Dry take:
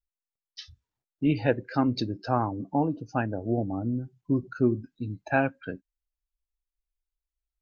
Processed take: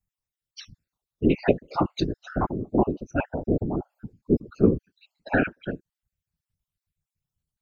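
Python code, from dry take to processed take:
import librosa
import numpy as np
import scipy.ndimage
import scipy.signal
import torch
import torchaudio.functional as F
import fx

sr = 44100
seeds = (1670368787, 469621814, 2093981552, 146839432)

y = fx.spec_dropout(x, sr, seeds[0], share_pct=40)
y = fx.whisperise(y, sr, seeds[1])
y = F.gain(torch.from_numpy(y), 4.5).numpy()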